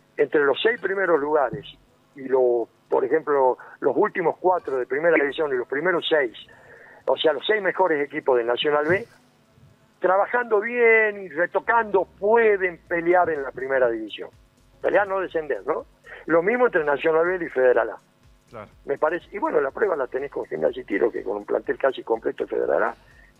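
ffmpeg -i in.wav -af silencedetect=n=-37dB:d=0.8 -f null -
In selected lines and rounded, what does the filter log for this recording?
silence_start: 9.04
silence_end: 10.02 | silence_duration: 0.99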